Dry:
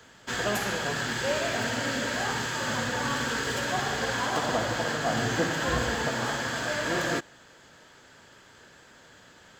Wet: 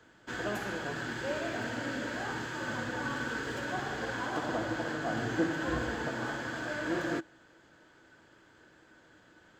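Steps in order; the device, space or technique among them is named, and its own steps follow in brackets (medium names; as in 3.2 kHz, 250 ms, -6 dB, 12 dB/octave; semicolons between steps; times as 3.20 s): inside a helmet (treble shelf 3.1 kHz -9 dB; small resonant body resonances 320/1500 Hz, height 12 dB, ringing for 95 ms); trim -6.5 dB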